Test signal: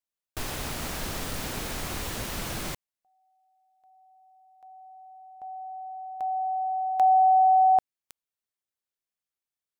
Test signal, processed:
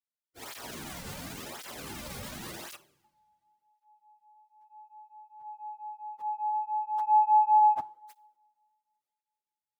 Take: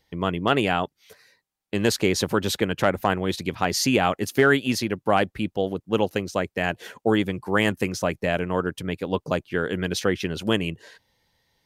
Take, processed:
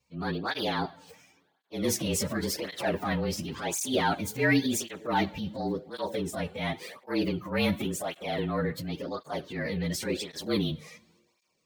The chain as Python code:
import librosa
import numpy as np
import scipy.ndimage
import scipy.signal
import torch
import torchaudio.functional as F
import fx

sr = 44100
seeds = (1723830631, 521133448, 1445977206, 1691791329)

y = fx.partial_stretch(x, sr, pct=111)
y = fx.rev_double_slope(y, sr, seeds[0], early_s=0.53, late_s=2.7, knee_db=-21, drr_db=18.5)
y = fx.transient(y, sr, attack_db=-7, sustain_db=6)
y = fx.flanger_cancel(y, sr, hz=0.92, depth_ms=3.2)